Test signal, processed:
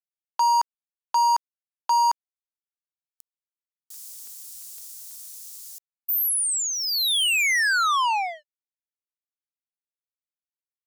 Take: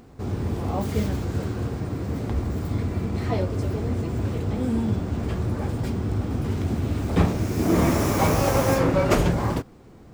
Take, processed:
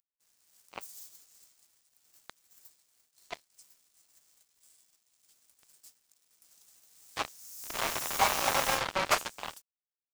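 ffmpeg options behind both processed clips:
-filter_complex "[0:a]highpass=f=730:w=0.5412,highpass=f=730:w=1.3066,acrossover=split=5700[a][b];[a]acrusher=bits=3:mix=0:aa=0.5[c];[b]aeval=exprs='sgn(val(0))*max(abs(val(0))-0.00141,0)':c=same[d];[c][d]amix=inputs=2:normalize=0"

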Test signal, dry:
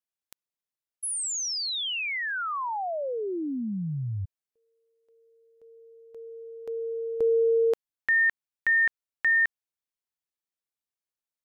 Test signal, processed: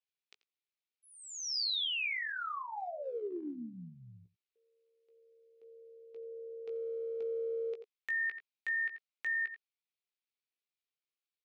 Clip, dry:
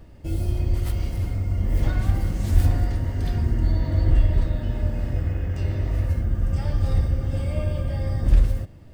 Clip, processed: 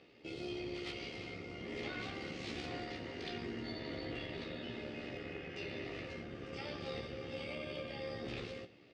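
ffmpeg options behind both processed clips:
-filter_complex "[0:a]tremolo=f=72:d=0.462,highpass=380,equalizer=f=420:t=q:w=4:g=5,equalizer=f=620:t=q:w=4:g=-8,equalizer=f=960:t=q:w=4:g=-10,equalizer=f=1.6k:t=q:w=4:g=-7,equalizer=f=2.4k:t=q:w=4:g=5,lowpass=f=4.3k:w=0.5412,lowpass=f=4.3k:w=1.3066,asplit=2[a][b];[b]aecho=0:1:87:0.112[c];[a][c]amix=inputs=2:normalize=0,acompressor=threshold=-34dB:ratio=4:attack=0.49:release=112:knee=1:detection=rms,highshelf=f=3.3k:g=9.5,asplit=2[d][e];[e]adelay=17,volume=-7dB[f];[d][f]amix=inputs=2:normalize=0,volume=-2.5dB"

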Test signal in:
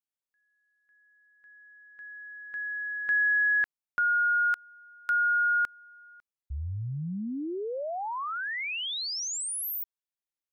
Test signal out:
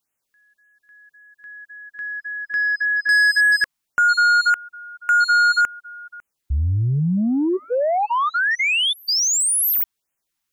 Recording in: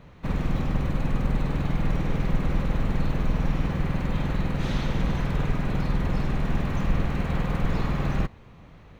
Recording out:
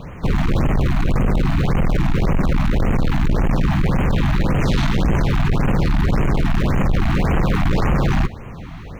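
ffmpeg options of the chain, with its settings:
-af "apsyclip=18dB,asoftclip=type=tanh:threshold=-10.5dB,afftfilt=real='re*(1-between(b*sr/1024,420*pow(4600/420,0.5+0.5*sin(2*PI*1.8*pts/sr))/1.41,420*pow(4600/420,0.5+0.5*sin(2*PI*1.8*pts/sr))*1.41))':imag='im*(1-between(b*sr/1024,420*pow(4600/420,0.5+0.5*sin(2*PI*1.8*pts/sr))/1.41,420*pow(4600/420,0.5+0.5*sin(2*PI*1.8*pts/sr))*1.41))':win_size=1024:overlap=0.75,volume=-2.5dB"

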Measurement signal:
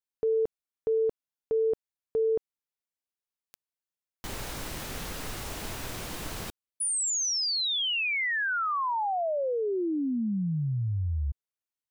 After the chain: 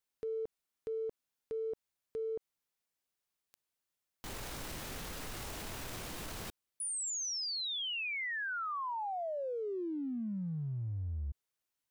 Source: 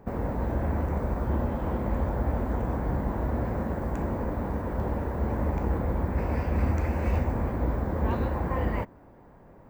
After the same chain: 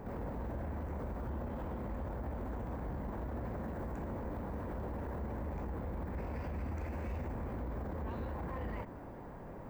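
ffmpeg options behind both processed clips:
-af "acompressor=threshold=-43dB:ratio=5:attack=0.1:release=29:detection=rms,volume=5dB"

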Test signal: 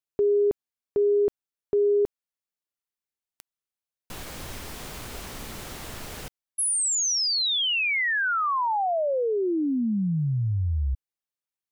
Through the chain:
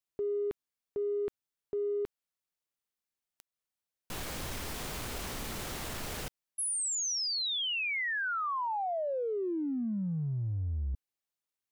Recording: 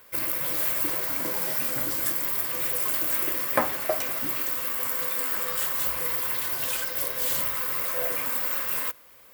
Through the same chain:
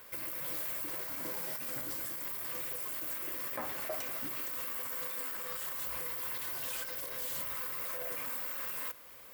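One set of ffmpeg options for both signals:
-af "areverse,acompressor=threshold=-33dB:ratio=4:attack=0.73:release=31:knee=1:detection=peak,areverse,alimiter=level_in=3dB:limit=-24dB:level=0:latency=1:release=191,volume=-3dB"

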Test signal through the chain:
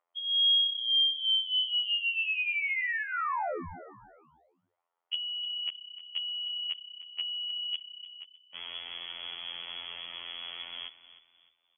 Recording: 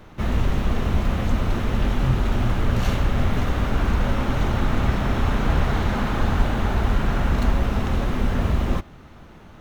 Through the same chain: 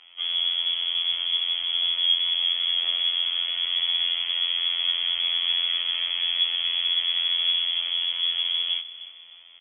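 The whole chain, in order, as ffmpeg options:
-filter_complex "[0:a]equalizer=f=150:w=0.6:g=5,lowpass=f=2.9k:t=q:w=0.5098,lowpass=f=2.9k:t=q:w=0.6013,lowpass=f=2.9k:t=q:w=0.9,lowpass=f=2.9k:t=q:w=2.563,afreqshift=-3400,afftfilt=real='hypot(re,im)*cos(PI*b)':imag='0':win_size=2048:overlap=0.75,bandreject=f=1.6k:w=8.5,acrossover=split=490|1200[a][b][c];[b]acompressor=mode=upward:threshold=-57dB:ratio=2.5[d];[a][d][c]amix=inputs=3:normalize=0,adynamicequalizer=threshold=0.00251:dfrequency=220:dqfactor=1.2:tfrequency=220:tqfactor=1.2:attack=5:release=100:ratio=0.375:range=2:mode=cutabove:tftype=bell,asplit=4[e][f][g][h];[f]adelay=305,afreqshift=32,volume=-15dB[i];[g]adelay=610,afreqshift=64,volume=-24.4dB[j];[h]adelay=915,afreqshift=96,volume=-33.7dB[k];[e][i][j][k]amix=inputs=4:normalize=0,volume=-5dB"

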